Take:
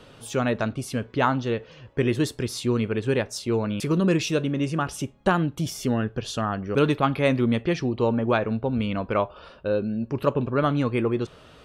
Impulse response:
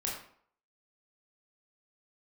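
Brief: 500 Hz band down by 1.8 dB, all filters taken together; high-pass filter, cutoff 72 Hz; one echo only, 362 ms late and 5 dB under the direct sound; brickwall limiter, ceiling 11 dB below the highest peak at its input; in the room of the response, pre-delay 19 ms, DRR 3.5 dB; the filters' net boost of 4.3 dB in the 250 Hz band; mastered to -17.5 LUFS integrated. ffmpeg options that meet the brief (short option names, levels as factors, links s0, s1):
-filter_complex "[0:a]highpass=72,equalizer=f=250:t=o:g=6.5,equalizer=f=500:t=o:g=-4.5,alimiter=limit=0.126:level=0:latency=1,aecho=1:1:362:0.562,asplit=2[s0][s1];[1:a]atrim=start_sample=2205,adelay=19[s2];[s1][s2]afir=irnorm=-1:irlink=0,volume=0.447[s3];[s0][s3]amix=inputs=2:normalize=0,volume=2.37"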